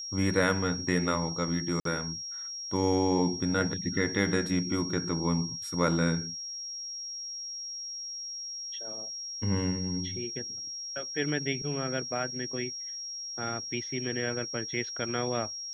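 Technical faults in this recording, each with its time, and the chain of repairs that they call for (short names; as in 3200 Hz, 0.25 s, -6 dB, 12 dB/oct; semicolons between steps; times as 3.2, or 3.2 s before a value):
tone 5600 Hz -36 dBFS
1.8–1.85 gap 53 ms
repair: notch 5600 Hz, Q 30; interpolate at 1.8, 53 ms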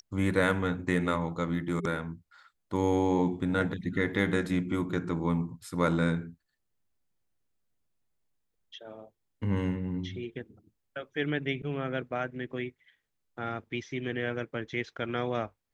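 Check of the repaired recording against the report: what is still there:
none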